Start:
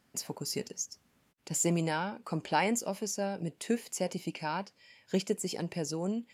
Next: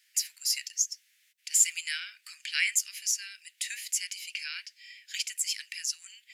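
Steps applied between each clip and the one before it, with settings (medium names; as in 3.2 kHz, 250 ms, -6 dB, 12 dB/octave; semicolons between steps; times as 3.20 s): steep high-pass 1.8 kHz 48 dB/octave; trim +9 dB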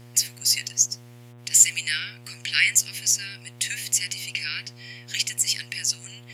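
mains buzz 120 Hz, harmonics 32, -54 dBFS -8 dB/octave; trim +7.5 dB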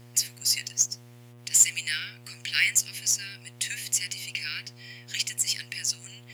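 companded quantiser 6-bit; trim -3.5 dB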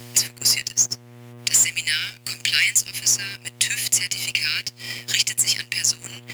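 waveshaping leveller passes 2; three bands compressed up and down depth 70%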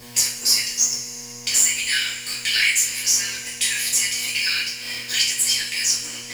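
companding laws mixed up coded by mu; two-slope reverb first 0.42 s, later 4.2 s, from -20 dB, DRR -8 dB; trim -8 dB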